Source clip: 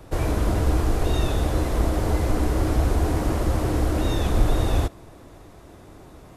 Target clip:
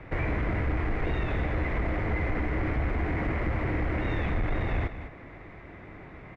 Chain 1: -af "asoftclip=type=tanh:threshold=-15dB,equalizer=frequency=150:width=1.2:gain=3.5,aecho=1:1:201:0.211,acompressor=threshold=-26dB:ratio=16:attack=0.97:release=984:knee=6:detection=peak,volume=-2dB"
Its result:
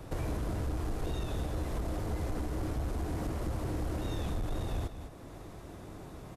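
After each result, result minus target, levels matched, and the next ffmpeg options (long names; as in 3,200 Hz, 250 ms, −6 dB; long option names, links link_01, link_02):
2,000 Hz band −9.5 dB; downward compressor: peak gain reduction +6.5 dB
-af "asoftclip=type=tanh:threshold=-15dB,lowpass=frequency=2100:width_type=q:width=6.1,equalizer=frequency=150:width=1.2:gain=3.5,aecho=1:1:201:0.211,acompressor=threshold=-26dB:ratio=16:attack=0.97:release=984:knee=6:detection=peak,volume=-2dB"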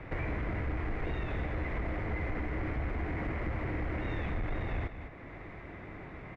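downward compressor: peak gain reduction +6.5 dB
-af "asoftclip=type=tanh:threshold=-15dB,lowpass=frequency=2100:width_type=q:width=6.1,equalizer=frequency=150:width=1.2:gain=3.5,aecho=1:1:201:0.211,acompressor=threshold=-19dB:ratio=16:attack=0.97:release=984:knee=6:detection=peak,volume=-2dB"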